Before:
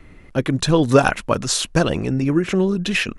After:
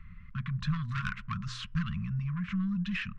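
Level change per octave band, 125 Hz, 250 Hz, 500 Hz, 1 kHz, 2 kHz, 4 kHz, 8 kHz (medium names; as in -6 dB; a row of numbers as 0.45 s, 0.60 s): -9.5 dB, -14.5 dB, under -40 dB, -18.5 dB, -14.5 dB, -18.0 dB, -29.5 dB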